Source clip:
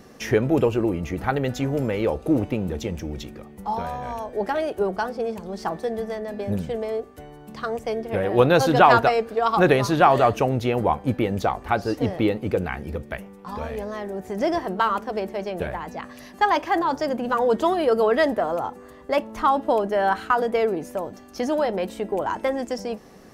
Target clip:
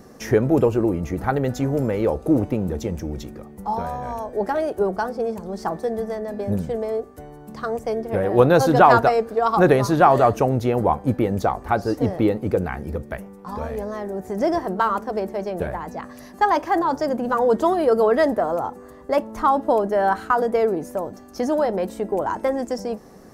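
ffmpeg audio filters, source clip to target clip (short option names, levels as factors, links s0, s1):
-af "equalizer=f=2900:t=o:w=1.2:g=-9.5,volume=1.33"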